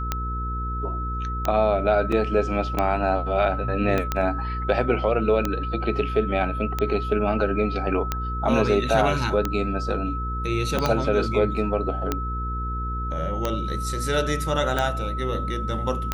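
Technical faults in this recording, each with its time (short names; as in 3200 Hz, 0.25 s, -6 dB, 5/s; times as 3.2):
hum 60 Hz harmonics 8 -29 dBFS
tick 45 rpm -9 dBFS
tone 1300 Hz -30 dBFS
2.12 gap 4.3 ms
3.98 pop -11 dBFS
10.86 pop -8 dBFS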